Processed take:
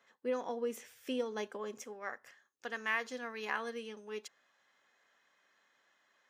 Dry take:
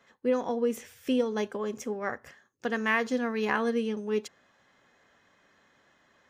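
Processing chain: HPF 450 Hz 6 dB/oct, from 1.84 s 1000 Hz; gain -5.5 dB

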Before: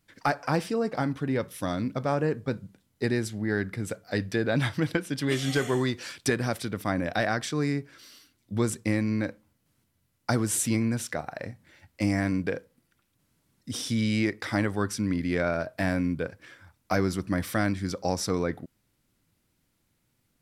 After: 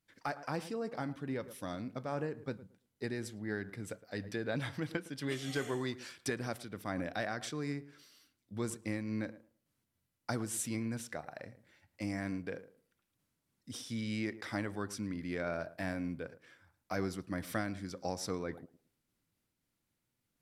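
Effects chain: low shelf 140 Hz -4 dB; tape echo 0.109 s, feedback 24%, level -14 dB, low-pass 1100 Hz; noise-modulated level, depth 55%; gain -7 dB

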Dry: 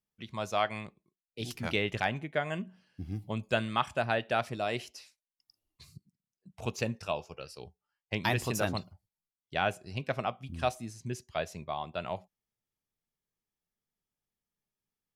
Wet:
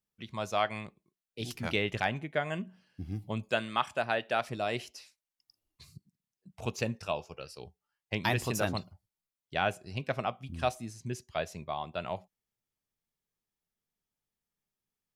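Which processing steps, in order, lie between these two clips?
3.49–4.49 HPF 280 Hz 6 dB/oct

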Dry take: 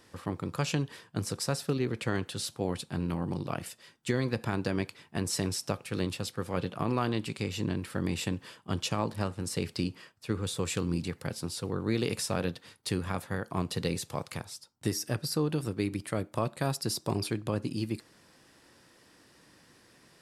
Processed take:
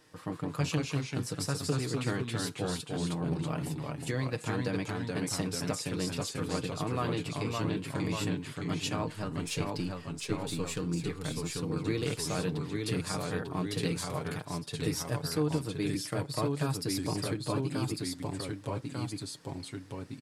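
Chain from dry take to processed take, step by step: 9.08–10.8 half-wave gain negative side -3 dB; comb 6.5 ms, depth 58%; echoes that change speed 0.149 s, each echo -1 st, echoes 2; gain -4 dB

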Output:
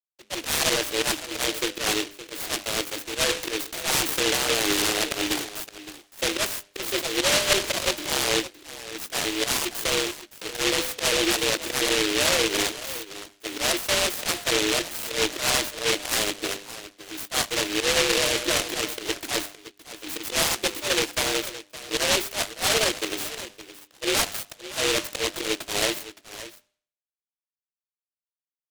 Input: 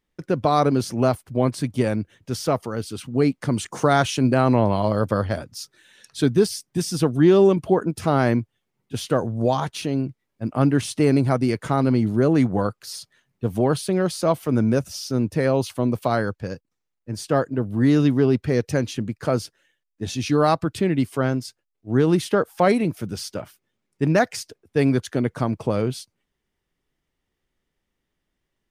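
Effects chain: formant sharpening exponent 3; bit-crush 6-bit; frequency shift +210 Hz; auto swell 0.118 s; limiter -15.5 dBFS, peak gain reduction 9 dB; notch 1100 Hz, Q 9.4; doubler 20 ms -12.5 dB; de-hum 100.4 Hz, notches 8; on a send: echo 0.566 s -14.5 dB; on the sum: noise-modulated delay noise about 2800 Hz, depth 0.35 ms

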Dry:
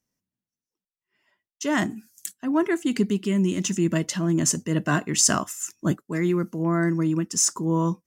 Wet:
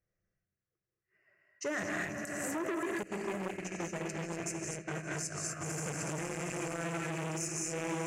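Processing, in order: rattling part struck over -25 dBFS, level -19 dBFS; fixed phaser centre 930 Hz, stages 6; swelling echo 82 ms, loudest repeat 8, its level -17 dB; non-linear reverb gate 0.27 s rising, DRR -1.5 dB; compressor 20:1, threshold -29 dBFS, peak gain reduction 13.5 dB; 3.03–5.61 gate -32 dBFS, range -17 dB; limiter -25 dBFS, peak gain reduction 8.5 dB; low shelf 330 Hz +4.5 dB; low-pass opened by the level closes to 2800 Hz, open at -28.5 dBFS; core saturation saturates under 930 Hz

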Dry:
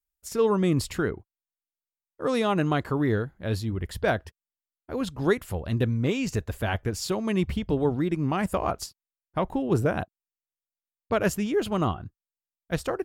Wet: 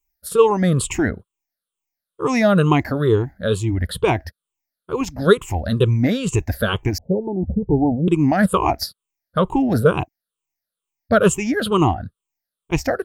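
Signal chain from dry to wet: moving spectral ripple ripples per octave 0.69, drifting -2.2 Hz, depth 19 dB; 6.98–8.08 Chebyshev low-pass 870 Hz, order 8; gain +5 dB

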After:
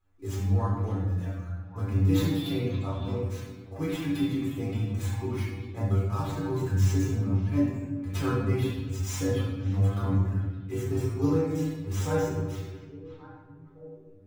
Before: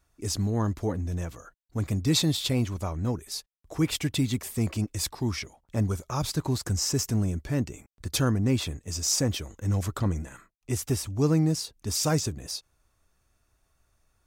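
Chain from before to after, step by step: median filter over 9 samples; reverb removal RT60 1.3 s; metallic resonator 94 Hz, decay 0.26 s, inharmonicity 0.002; delay with a stepping band-pass 0.565 s, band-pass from 2900 Hz, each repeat -1.4 oct, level -11 dB; shoebox room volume 790 m³, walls mixed, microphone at 3.9 m

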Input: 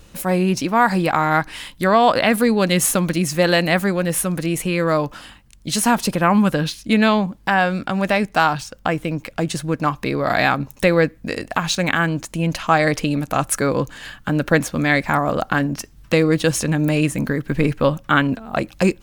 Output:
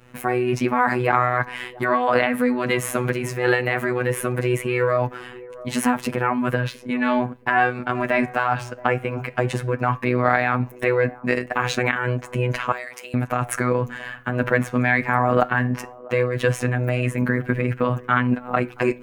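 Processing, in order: gate with hold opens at -35 dBFS; HPF 54 Hz; resonant high shelf 3000 Hz -11 dB, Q 1.5; in parallel at 0 dB: negative-ratio compressor -20 dBFS, ratio -0.5; on the sum: robotiser 124 Hz; 12.72–13.14 differentiator; flange 0.17 Hz, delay 3.4 ms, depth 9.6 ms, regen -84%; on a send: band-limited delay 0.676 s, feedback 42%, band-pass 560 Hz, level -18.5 dB; on the sum: noise-modulated level, depth 60%; gain +4 dB

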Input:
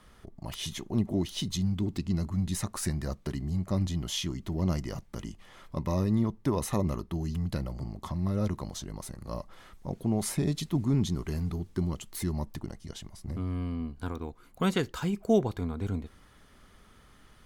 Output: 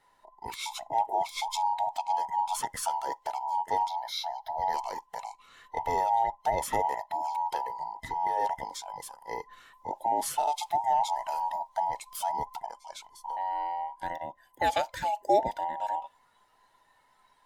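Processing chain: band inversion scrambler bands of 1000 Hz; spectral noise reduction 10 dB; 3.88–4.74 fixed phaser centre 1700 Hz, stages 8

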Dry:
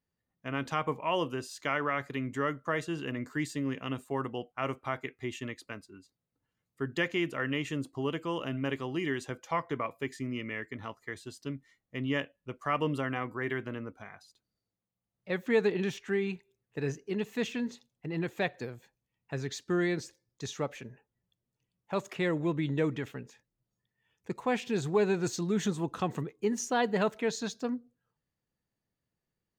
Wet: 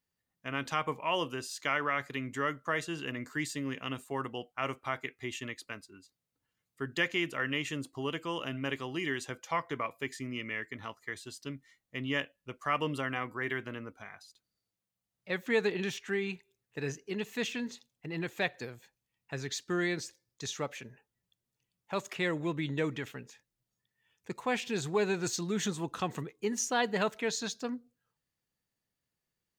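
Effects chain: tilt shelf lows -4 dB, about 1200 Hz

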